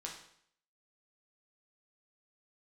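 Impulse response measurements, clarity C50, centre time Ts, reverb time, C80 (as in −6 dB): 5.5 dB, 30 ms, 0.65 s, 9.5 dB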